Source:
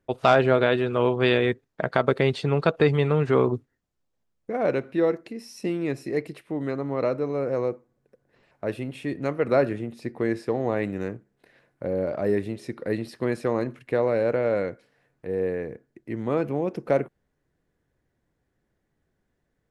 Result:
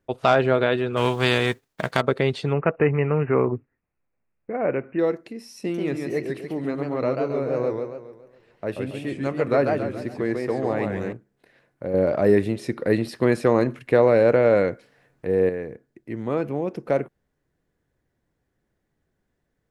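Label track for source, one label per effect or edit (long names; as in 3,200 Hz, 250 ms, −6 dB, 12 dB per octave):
0.960000	2.000000	spectral envelope flattened exponent 0.6
2.530000	4.990000	bad sample-rate conversion rate divided by 8×, down none, up filtered
5.600000	11.130000	feedback echo with a swinging delay time 138 ms, feedback 46%, depth 171 cents, level −4 dB
11.940000	15.490000	clip gain +6.5 dB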